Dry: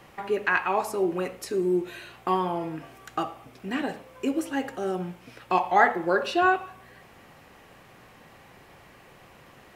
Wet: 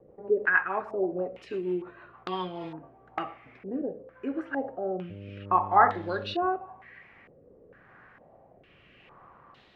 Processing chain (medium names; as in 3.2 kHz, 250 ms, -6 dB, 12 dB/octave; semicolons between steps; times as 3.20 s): rotary cabinet horn 6.3 Hz, later 0.85 Hz, at 2.04 s; 5.09–6.33 s: mains buzz 100 Hz, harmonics 6, -37 dBFS -5 dB/octave; step-sequenced low-pass 2.2 Hz 490–3800 Hz; trim -5 dB